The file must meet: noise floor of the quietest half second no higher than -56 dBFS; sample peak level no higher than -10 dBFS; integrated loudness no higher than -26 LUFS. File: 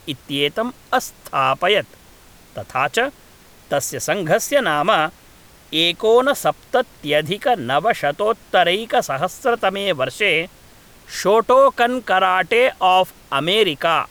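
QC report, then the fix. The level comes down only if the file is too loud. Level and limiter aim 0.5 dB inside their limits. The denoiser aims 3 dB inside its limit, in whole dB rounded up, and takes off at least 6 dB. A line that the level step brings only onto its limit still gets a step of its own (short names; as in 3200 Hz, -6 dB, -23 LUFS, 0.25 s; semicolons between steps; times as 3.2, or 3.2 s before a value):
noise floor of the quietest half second -47 dBFS: fail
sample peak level -4.5 dBFS: fail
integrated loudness -18.0 LUFS: fail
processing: denoiser 6 dB, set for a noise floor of -47 dBFS; gain -8.5 dB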